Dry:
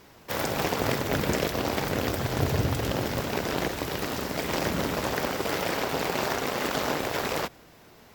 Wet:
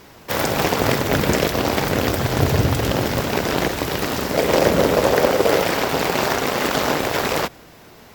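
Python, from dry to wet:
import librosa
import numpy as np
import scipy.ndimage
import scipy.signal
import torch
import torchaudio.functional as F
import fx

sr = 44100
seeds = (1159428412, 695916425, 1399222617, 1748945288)

y = fx.peak_eq(x, sr, hz=510.0, db=9.0, octaves=0.87, at=(4.32, 5.62))
y = F.gain(torch.from_numpy(y), 8.0).numpy()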